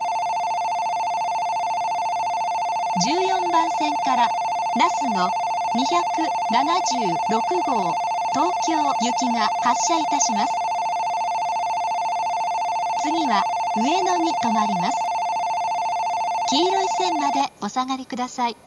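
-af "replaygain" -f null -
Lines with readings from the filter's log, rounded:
track_gain = +3.6 dB
track_peak = 0.374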